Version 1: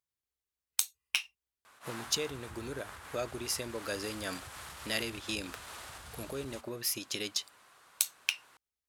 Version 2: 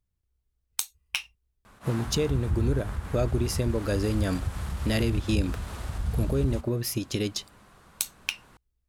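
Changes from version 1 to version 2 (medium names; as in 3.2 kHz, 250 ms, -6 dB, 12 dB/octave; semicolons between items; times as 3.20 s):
background: add peaking EQ 200 Hz +7.5 dB 0.34 oct; master: remove high-pass 1.3 kHz 6 dB/octave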